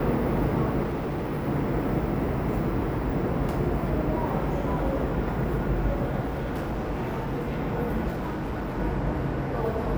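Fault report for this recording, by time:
0:00.83–0:01.48: clipping −26 dBFS
0:06.23–0:07.58: clipping −25.5 dBFS
0:08.12–0:08.79: clipping −27 dBFS

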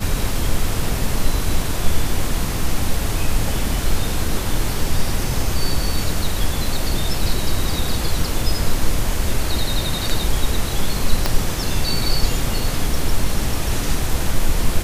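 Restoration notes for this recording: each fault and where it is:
0:11.26: click −3 dBFS

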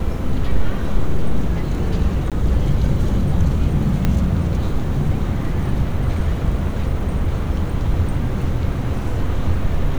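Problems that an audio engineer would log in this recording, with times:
0:02.30–0:02.32: drop-out 17 ms
0:04.05: click −6 dBFS

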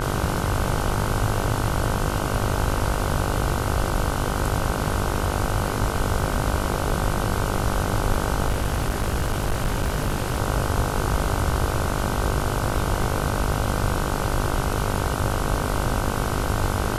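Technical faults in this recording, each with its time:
mains buzz 50 Hz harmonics 31 −28 dBFS
0:08.47–0:10.38: clipping −18 dBFS

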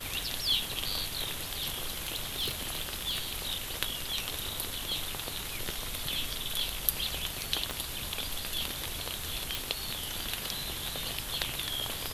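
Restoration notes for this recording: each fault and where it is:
0:01.79–0:03.49: clipping −26 dBFS
0:07.71: click −17 dBFS
0:09.55: click

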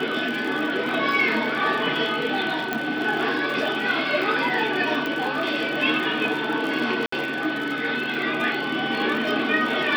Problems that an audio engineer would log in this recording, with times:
surface crackle 67 per second −29 dBFS
whistle 1,500 Hz −29 dBFS
0:02.73: click −11 dBFS
0:05.06: click −14 dBFS
0:07.06–0:07.12: drop-out 64 ms

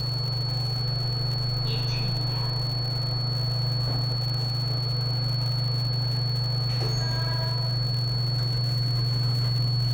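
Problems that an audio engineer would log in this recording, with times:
surface crackle 170 per second −31 dBFS
whistle 4,400 Hz −30 dBFS

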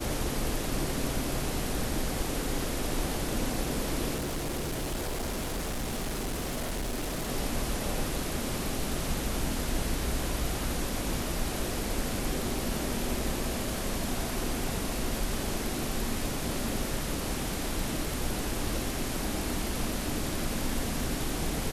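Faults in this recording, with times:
0:04.16–0:07.30: clipping −29 dBFS

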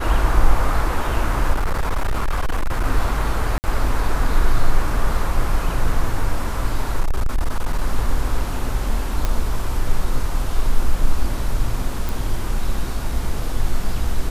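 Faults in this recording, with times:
0:01.53–0:02.85: clipping −15.5 dBFS
0:03.58–0:03.64: drop-out 59 ms
0:07.00–0:07.83: clipping −14 dBFS
0:09.25: click −8 dBFS
0:12.09: click

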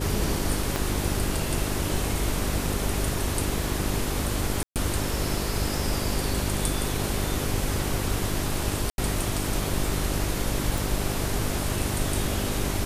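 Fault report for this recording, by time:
mains hum 50 Hz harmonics 8 −31 dBFS
0:00.76: click
0:04.63–0:04.76: drop-out 128 ms
0:08.90–0:08.98: drop-out 81 ms
0:10.78: click

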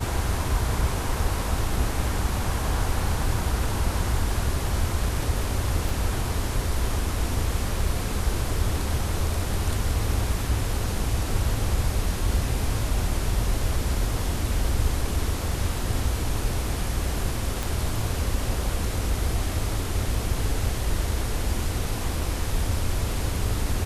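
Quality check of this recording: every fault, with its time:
0:05.89: click
0:17.63: click

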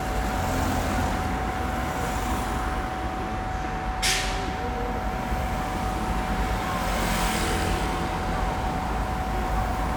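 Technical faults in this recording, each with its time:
whistle 750 Hz −32 dBFS

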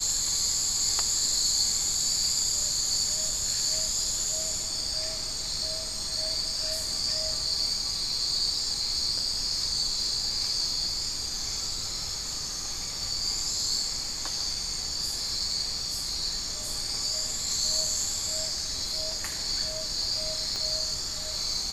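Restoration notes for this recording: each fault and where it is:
0:20.56: click −20 dBFS

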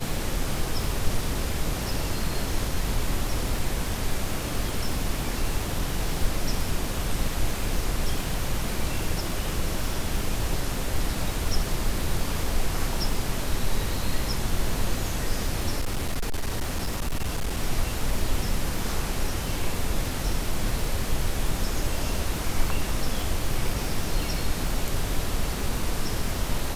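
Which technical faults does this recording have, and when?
surface crackle 150 per second −31 dBFS
0:15.79–0:17.57: clipping −22.5 dBFS

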